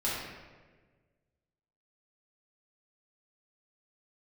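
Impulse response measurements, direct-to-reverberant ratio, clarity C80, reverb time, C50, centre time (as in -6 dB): -8.5 dB, 2.0 dB, 1.4 s, -0.5 dB, 86 ms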